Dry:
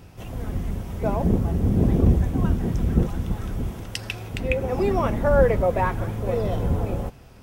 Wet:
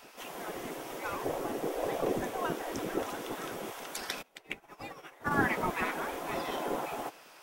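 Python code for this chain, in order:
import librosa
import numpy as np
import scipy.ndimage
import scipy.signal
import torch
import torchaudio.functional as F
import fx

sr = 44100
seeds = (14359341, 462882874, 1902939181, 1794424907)

y = fx.spec_gate(x, sr, threshold_db=-15, keep='weak')
y = fx.low_shelf(y, sr, hz=320.0, db=-5.0)
y = fx.upward_expand(y, sr, threshold_db=-44.0, expansion=2.5, at=(4.21, 5.3), fade=0.02)
y = y * 10.0 ** (3.0 / 20.0)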